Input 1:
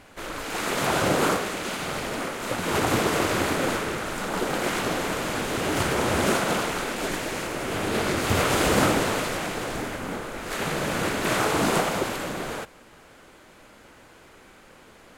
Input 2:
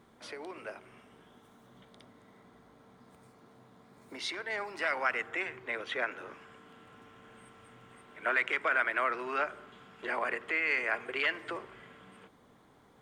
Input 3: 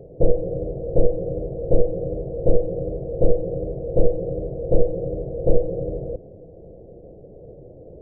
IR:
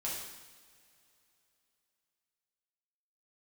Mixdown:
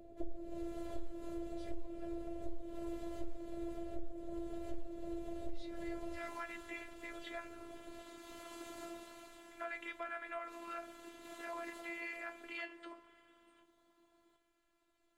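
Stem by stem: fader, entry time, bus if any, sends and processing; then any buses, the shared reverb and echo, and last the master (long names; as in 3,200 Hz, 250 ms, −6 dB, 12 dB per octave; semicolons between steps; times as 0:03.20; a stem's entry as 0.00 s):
−16.0 dB, 0.00 s, no send, no processing
+2.0 dB, 1.35 s, no send, no processing
0.0 dB, 0.00 s, send −10 dB, brickwall limiter −12.5 dBFS, peak gain reduction 9.5 dB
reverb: on, pre-delay 3 ms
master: tuned comb filter 310 Hz, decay 0.16 s, harmonics all, mix 90%; phases set to zero 339 Hz; downward compressor 3 to 1, threshold −39 dBFS, peak gain reduction 15 dB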